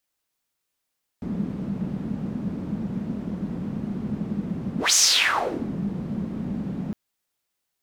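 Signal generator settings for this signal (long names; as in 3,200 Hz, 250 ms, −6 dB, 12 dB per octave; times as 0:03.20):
pass-by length 5.71 s, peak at 0:03.72, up 0.17 s, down 0.81 s, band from 200 Hz, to 6,500 Hz, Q 4.7, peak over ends 12.5 dB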